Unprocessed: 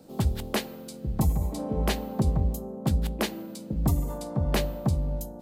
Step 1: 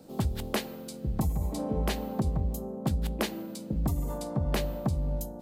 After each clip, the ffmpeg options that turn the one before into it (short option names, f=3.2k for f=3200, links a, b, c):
-af "acompressor=threshold=-24dB:ratio=6"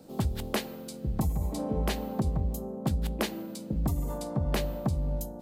-af anull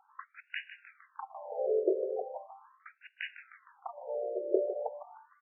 -af "highpass=f=370:t=q:w=4,aecho=1:1:154|308|462|616|770|924:0.251|0.143|0.0816|0.0465|0.0265|0.0151,afftfilt=real='re*between(b*sr/1024,480*pow(2100/480,0.5+0.5*sin(2*PI*0.39*pts/sr))/1.41,480*pow(2100/480,0.5+0.5*sin(2*PI*0.39*pts/sr))*1.41)':imag='im*between(b*sr/1024,480*pow(2100/480,0.5+0.5*sin(2*PI*0.39*pts/sr))/1.41,480*pow(2100/480,0.5+0.5*sin(2*PI*0.39*pts/sr))*1.41)':win_size=1024:overlap=0.75"